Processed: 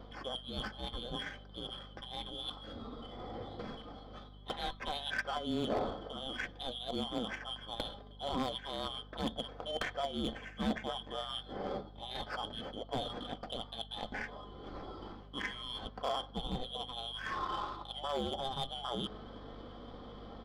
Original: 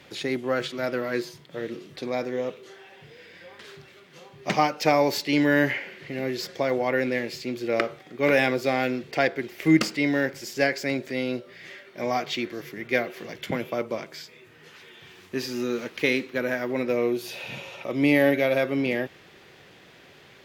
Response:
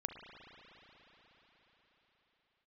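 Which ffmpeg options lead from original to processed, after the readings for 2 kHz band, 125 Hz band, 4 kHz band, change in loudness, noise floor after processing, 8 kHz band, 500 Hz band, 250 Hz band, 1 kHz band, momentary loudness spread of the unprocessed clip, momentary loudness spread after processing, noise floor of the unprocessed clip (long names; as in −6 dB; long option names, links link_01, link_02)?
−16.0 dB, −11.0 dB, −3.0 dB, −14.0 dB, −52 dBFS, −15.5 dB, −16.0 dB, −16.0 dB, −9.0 dB, 15 LU, 10 LU, −52 dBFS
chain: -af "afftfilt=real='real(if(lt(b,272),68*(eq(floor(b/68),0)*1+eq(floor(b/68),1)*3+eq(floor(b/68),2)*0+eq(floor(b/68),3)*2)+mod(b,68),b),0)':imag='imag(if(lt(b,272),68*(eq(floor(b/68),0)*1+eq(floor(b/68),1)*3+eq(floor(b/68),2)*0+eq(floor(b/68),3)*2)+mod(b,68),b),0)':win_size=2048:overlap=0.75,afftfilt=real='re*lt(hypot(re,im),0.708)':imag='im*lt(hypot(re,im),0.708)':win_size=1024:overlap=0.75,bandreject=frequency=930:width=11,aecho=1:1:3.9:0.35,adynamicequalizer=threshold=0.00316:dfrequency=1600:dqfactor=4.2:tfrequency=1600:tqfactor=4.2:attack=5:release=100:ratio=0.375:range=2.5:mode=boostabove:tftype=bell,areverse,acompressor=threshold=-38dB:ratio=4,areverse,flanger=delay=4.1:depth=1.1:regen=73:speed=0.3:shape=triangular,adynamicsmooth=sensitivity=4:basefreq=1100,aeval=exprs='val(0)+0.000562*(sin(2*PI*50*n/s)+sin(2*PI*2*50*n/s)/2+sin(2*PI*3*50*n/s)/3+sin(2*PI*4*50*n/s)/4+sin(2*PI*5*50*n/s)/5)':channel_layout=same,asoftclip=type=hard:threshold=-39.5dB,volume=12.5dB"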